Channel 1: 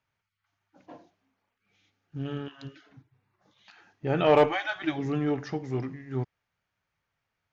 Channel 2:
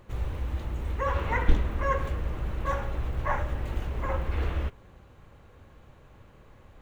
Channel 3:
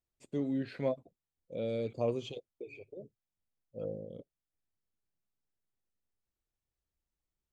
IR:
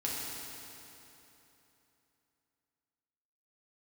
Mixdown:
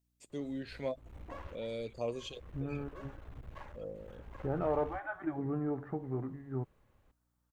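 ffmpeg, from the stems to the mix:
-filter_complex "[0:a]lowpass=f=1.4k:w=0.5412,lowpass=f=1.4k:w=1.3066,acompressor=threshold=-28dB:ratio=2.5,adelay=400,volume=-4dB[a];[1:a]alimiter=limit=-18dB:level=0:latency=1:release=478,aeval=exprs='clip(val(0),-1,0.015)':c=same,adelay=300,volume=-16dB[b];[2:a]highshelf=f=3.8k:g=8.5,aeval=exprs='val(0)+0.000282*(sin(2*PI*60*n/s)+sin(2*PI*2*60*n/s)/2+sin(2*PI*3*60*n/s)/3+sin(2*PI*4*60*n/s)/4+sin(2*PI*5*60*n/s)/5)':c=same,lowshelf=f=430:g=-6,volume=-2dB,asplit=2[c][d];[d]apad=whole_len=313692[e];[b][e]sidechaincompress=threshold=-51dB:ratio=8:attack=38:release=159[f];[a][f][c]amix=inputs=3:normalize=0"

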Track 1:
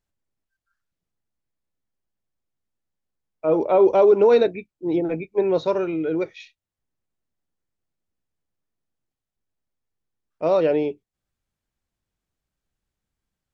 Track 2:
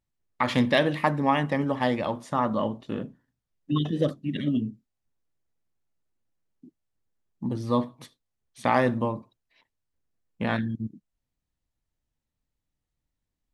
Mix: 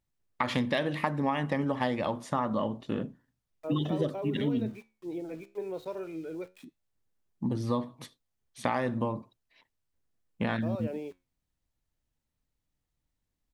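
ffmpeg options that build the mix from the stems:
-filter_complex "[0:a]acompressor=threshold=-17dB:ratio=6,aeval=exprs='val(0)*gte(abs(val(0)),0.0112)':c=same,flanger=delay=8.5:depth=7:regen=77:speed=0.29:shape=triangular,adelay=200,volume=-10dB[a];[1:a]volume=0.5dB[b];[a][b]amix=inputs=2:normalize=0,acompressor=threshold=-25dB:ratio=6"

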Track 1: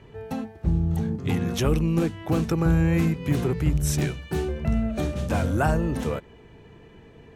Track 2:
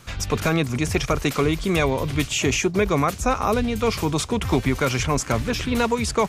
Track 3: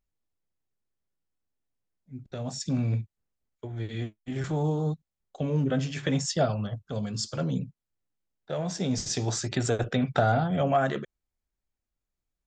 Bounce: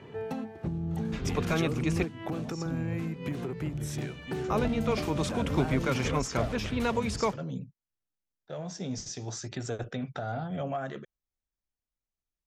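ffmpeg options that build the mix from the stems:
-filter_complex "[0:a]highpass=140,acompressor=threshold=-32dB:ratio=5,volume=3dB[a];[1:a]adelay=1050,volume=-7.5dB,asplit=3[b][c][d];[b]atrim=end=2.05,asetpts=PTS-STARTPTS,afade=t=out:st=2.046:d=0.004:c=hsin[e];[c]atrim=start=2.05:end=4.5,asetpts=PTS-STARTPTS,volume=0[f];[d]atrim=start=4.5,asetpts=PTS-STARTPTS,afade=t=in:d=0.004:c=hsin[g];[e][f][g]concat=n=3:v=0:a=1[h];[2:a]equalizer=f=6k:t=o:w=0.4:g=7,volume=-7dB[i];[a][i]amix=inputs=2:normalize=0,alimiter=limit=-23.5dB:level=0:latency=1:release=346,volume=0dB[j];[h][j]amix=inputs=2:normalize=0,highshelf=f=6.7k:g=-9"

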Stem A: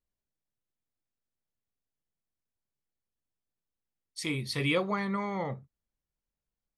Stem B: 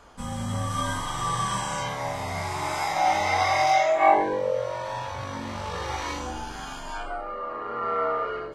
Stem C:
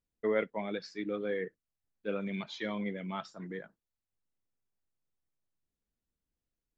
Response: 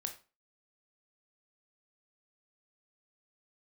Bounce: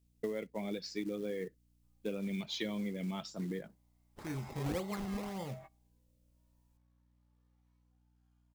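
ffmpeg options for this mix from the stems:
-filter_complex "[0:a]highshelf=f=4.7k:g=-9.5,acrusher=samples=21:mix=1:aa=0.000001:lfo=1:lforange=21:lforate=1.8,lowshelf=f=370:g=8,volume=-12dB,asplit=2[a][b];[1:a]acompressor=threshold=-33dB:ratio=6,adelay=1650,volume=-18.5dB[c];[2:a]tiltshelf=f=840:g=8.5,acompressor=threshold=-35dB:ratio=10,aexciter=amount=2.3:drive=9.4:freq=2.2k,volume=0.5dB[d];[b]apad=whole_len=449523[e];[c][e]sidechaingate=range=-33dB:threshold=-53dB:ratio=16:detection=peak[f];[a][f][d]amix=inputs=3:normalize=0,aeval=exprs='val(0)+0.000316*(sin(2*PI*60*n/s)+sin(2*PI*2*60*n/s)/2+sin(2*PI*3*60*n/s)/3+sin(2*PI*4*60*n/s)/4+sin(2*PI*5*60*n/s)/5)':c=same,acrusher=bits=6:mode=log:mix=0:aa=0.000001"

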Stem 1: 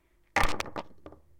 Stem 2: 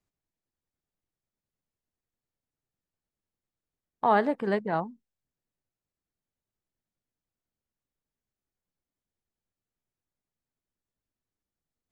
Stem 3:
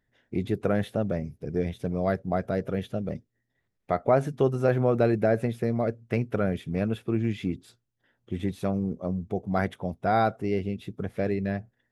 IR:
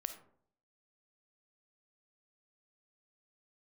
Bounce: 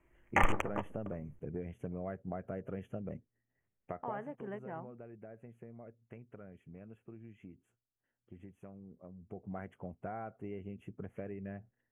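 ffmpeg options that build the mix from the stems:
-filter_complex "[0:a]volume=-1dB[a];[1:a]acompressor=threshold=-31dB:ratio=2,volume=-11.5dB[b];[2:a]acompressor=threshold=-30dB:ratio=6,volume=2dB,afade=t=out:st=3.8:d=0.48:silence=0.281838,afade=t=in:st=9.18:d=0.26:silence=0.375837[c];[a][b][c]amix=inputs=3:normalize=0,asuperstop=centerf=4400:order=12:qfactor=1.5,highshelf=f=4.3k:g=-10"

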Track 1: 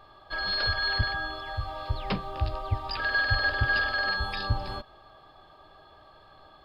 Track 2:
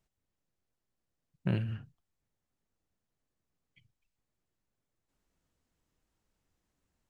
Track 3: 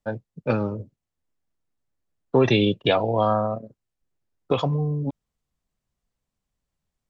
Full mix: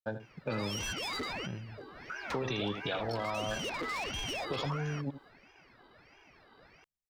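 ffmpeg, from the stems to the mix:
-filter_complex "[0:a]flanger=delay=8.5:depth=1.9:regen=89:speed=0.48:shape=triangular,volume=31dB,asoftclip=hard,volume=-31dB,aeval=exprs='val(0)*sin(2*PI*980*n/s+980*0.65/1.5*sin(2*PI*1.5*n/s))':c=same,adelay=200,volume=1dB[a];[1:a]volume=-10.5dB,asplit=2[b][c];[2:a]highshelf=f=2.8k:g=10,volume=-7dB,asplit=2[d][e];[e]volume=-13.5dB[f];[c]apad=whole_len=301710[g];[a][g]sidechaincompress=threshold=-54dB:ratio=3:attack=26:release=583[h];[b][d]amix=inputs=2:normalize=0,agate=range=-33dB:threshold=-54dB:ratio=3:detection=peak,alimiter=limit=-22dB:level=0:latency=1,volume=0dB[i];[f]aecho=0:1:78:1[j];[h][i][j]amix=inputs=3:normalize=0,acompressor=threshold=-32dB:ratio=3"

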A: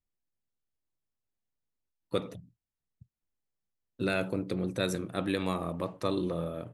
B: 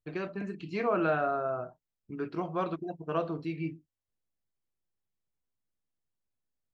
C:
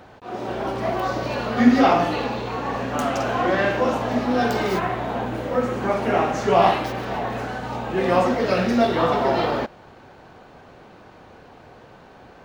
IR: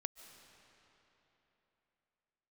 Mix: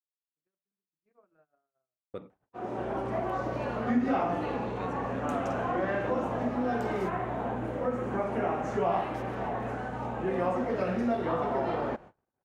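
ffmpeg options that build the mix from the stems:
-filter_complex "[0:a]lowpass=5k,bandreject=f=60:t=h:w=6,bandreject=f=120:t=h:w=6,bandreject=f=180:t=h:w=6,bandreject=f=240:t=h:w=6,bandreject=f=300:t=h:w=6,volume=-9.5dB,asplit=2[a][b];[1:a]acompressor=threshold=-31dB:ratio=4,adelay=300,volume=-16.5dB[c];[2:a]acompressor=threshold=-23dB:ratio=2,adelay=2300,volume=-5dB[d];[b]apad=whole_len=310288[e];[c][e]sidechaincompress=threshold=-56dB:ratio=8:attack=5.4:release=410[f];[a][f][d]amix=inputs=3:normalize=0,lowpass=9.4k,agate=range=-43dB:threshold=-46dB:ratio=16:detection=peak,equalizer=f=4.4k:w=0.91:g=-14"

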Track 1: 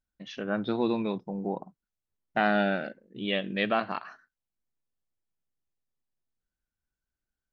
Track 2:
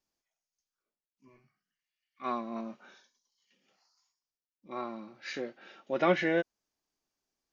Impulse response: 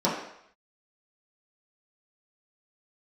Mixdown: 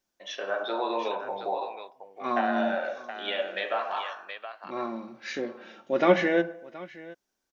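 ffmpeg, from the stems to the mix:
-filter_complex "[0:a]highpass=f=560:w=0.5412,highpass=f=560:w=1.3066,acompressor=threshold=-34dB:ratio=5,volume=1.5dB,asplit=3[a][b][c];[b]volume=-9.5dB[d];[c]volume=-4.5dB[e];[1:a]volume=3dB,asplit=3[f][g][h];[g]volume=-23.5dB[i];[h]volume=-18.5dB[j];[2:a]atrim=start_sample=2205[k];[d][i]amix=inputs=2:normalize=0[l];[l][k]afir=irnorm=-1:irlink=0[m];[e][j]amix=inputs=2:normalize=0,aecho=0:1:723:1[n];[a][f][m][n]amix=inputs=4:normalize=0"

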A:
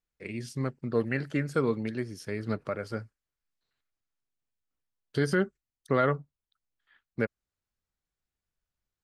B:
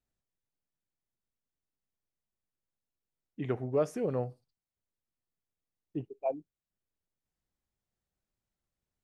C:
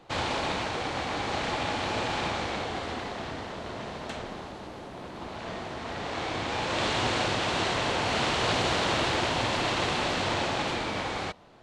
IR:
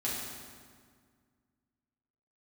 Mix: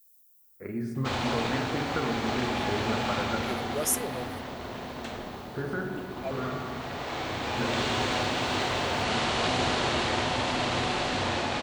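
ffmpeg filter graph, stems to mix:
-filter_complex "[0:a]highshelf=f=2k:t=q:w=3:g=-12.5,acompressor=threshold=-31dB:ratio=6,adelay=400,volume=1dB,asplit=2[a][b];[b]volume=-7dB[c];[1:a]aemphasis=mode=production:type=75fm,crystalizer=i=9:c=0,volume=-6.5dB,asplit=2[d][e];[2:a]adelay=950,volume=-3.5dB,asplit=2[f][g];[g]volume=-9.5dB[h];[e]apad=whole_len=415909[i];[a][i]sidechaincompress=threshold=-56dB:ratio=8:attack=16:release=992[j];[3:a]atrim=start_sample=2205[k];[c][h]amix=inputs=2:normalize=0[l];[l][k]afir=irnorm=-1:irlink=0[m];[j][d][f][m]amix=inputs=4:normalize=0"

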